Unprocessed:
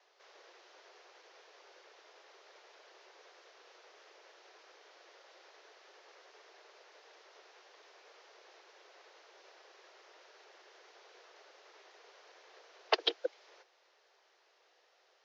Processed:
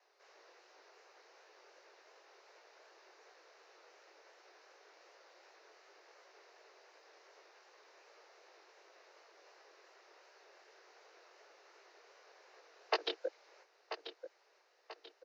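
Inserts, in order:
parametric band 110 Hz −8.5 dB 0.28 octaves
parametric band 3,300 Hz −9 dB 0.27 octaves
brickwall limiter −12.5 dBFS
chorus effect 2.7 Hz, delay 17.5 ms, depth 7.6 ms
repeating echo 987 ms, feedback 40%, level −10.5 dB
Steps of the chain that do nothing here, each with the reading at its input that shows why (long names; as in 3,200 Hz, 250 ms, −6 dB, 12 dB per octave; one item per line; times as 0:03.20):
parametric band 110 Hz: nothing at its input below 290 Hz
brickwall limiter −12.5 dBFS: peak of its input −14.0 dBFS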